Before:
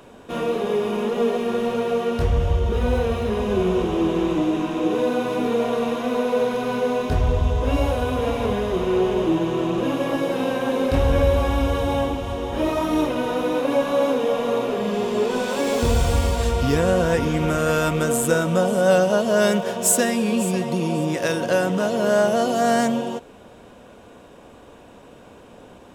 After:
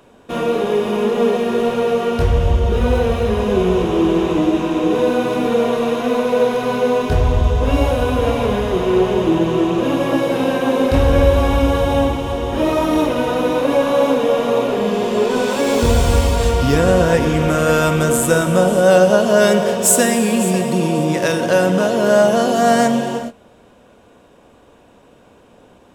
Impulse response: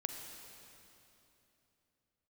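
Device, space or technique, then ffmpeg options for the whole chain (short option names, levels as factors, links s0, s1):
keyed gated reverb: -filter_complex "[0:a]asplit=3[s0][s1][s2];[1:a]atrim=start_sample=2205[s3];[s1][s3]afir=irnorm=-1:irlink=0[s4];[s2]apad=whole_len=1144089[s5];[s4][s5]sidechaingate=range=0.0224:threshold=0.0112:ratio=16:detection=peak,volume=1.68[s6];[s0][s6]amix=inputs=2:normalize=0,volume=0.708"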